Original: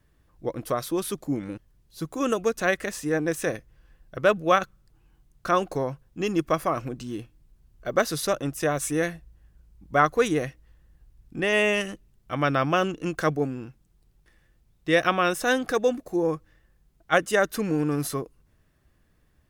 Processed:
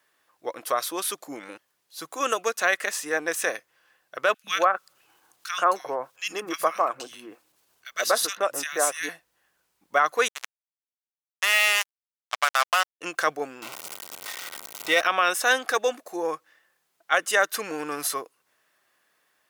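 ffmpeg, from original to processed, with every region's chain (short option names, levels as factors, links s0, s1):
-filter_complex "[0:a]asettb=1/sr,asplit=3[s0][s1][s2];[s0]atrim=end=4.344[s3];[s1]atrim=start=4.34:end=9.09,asetpts=PTS-STARTPTS,afade=t=in:d=0.004:c=qsin,afade=t=out:st=4.746:d=0.004:c=qsin,acompressor=mode=upward:threshold=0.00891:ratio=2.5:attack=3.2:release=140:knee=2.83:detection=peak,acrossover=split=170|1800[s4][s5][s6];[s4]adelay=100[s7];[s5]adelay=130[s8];[s7][s8][s6]amix=inputs=3:normalize=0,atrim=end_sample=209475[s9];[s2]atrim=start=9.086[s10];[s3][s9]acrossfade=d=0.004:c1=hsin:c2=qsin[s11];[s11][s10]acrossfade=d=0.004:c1=qsin:c2=hsin,asettb=1/sr,asplit=3[s12][s13][s14];[s12]atrim=end=10.284[s15];[s13]atrim=start=10.28:end=13.01,asetpts=PTS-STARTPTS,afade=t=in:d=0.004:c=qsin,afade=t=out:st=2.726:d=0.004:c=qsin,highpass=f=720:w=0.5412,highpass=f=720:w=1.3066,acrusher=bits=3:mix=0:aa=0.5[s16];[s14]atrim=start=13.006[s17];[s15][s16]acrossfade=d=0.004:c1=hsin:c2=qsin[s18];[s18][s17]acrossfade=d=0.004:c1=qsin:c2=hsin,asettb=1/sr,asplit=3[s19][s20][s21];[s19]atrim=end=13.624[s22];[s20]atrim=start=13.62:end=15.01,asetpts=PTS-STARTPTS,afade=t=in:d=0.004:c=qsin,afade=t=out:st=1.386:d=0.004:c=qsin,aeval=exprs='val(0)+0.5*0.0299*sgn(val(0))':c=same,asuperstop=centerf=1700:order=12:qfactor=6.9[s23];[s21]atrim=start=15.006[s24];[s22][s23]acrossfade=d=0.004:c1=hsin:c2=qsin[s25];[s25][s24]acrossfade=d=0.004:c1=qsin:c2=hsin,highpass=770,alimiter=level_in=5.01:limit=0.891:release=50:level=0:latency=1,volume=0.398"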